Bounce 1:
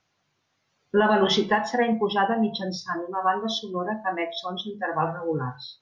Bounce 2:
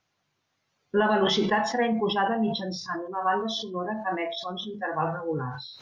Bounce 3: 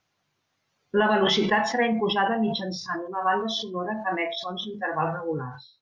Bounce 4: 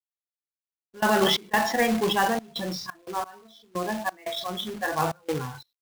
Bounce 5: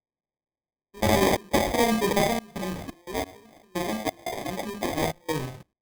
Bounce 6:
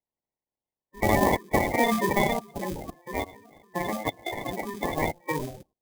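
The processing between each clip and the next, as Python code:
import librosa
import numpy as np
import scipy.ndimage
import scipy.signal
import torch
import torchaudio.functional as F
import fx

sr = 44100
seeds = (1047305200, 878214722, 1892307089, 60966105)

y1 = fx.sustainer(x, sr, db_per_s=62.0)
y1 = F.gain(torch.from_numpy(y1), -3.0).numpy()
y2 = fx.fade_out_tail(y1, sr, length_s=0.52)
y2 = fx.dynamic_eq(y2, sr, hz=2300.0, q=2.0, threshold_db=-44.0, ratio=4.0, max_db=6)
y2 = F.gain(torch.from_numpy(y2), 1.0).numpy()
y3 = fx.quant_companded(y2, sr, bits=4)
y3 = fx.step_gate(y3, sr, bpm=88, pattern='x.x...xx.xxxxx.x', floor_db=-24.0, edge_ms=4.5)
y4 = fx.sample_hold(y3, sr, seeds[0], rate_hz=1400.0, jitter_pct=0)
y5 = fx.spec_quant(y4, sr, step_db=30)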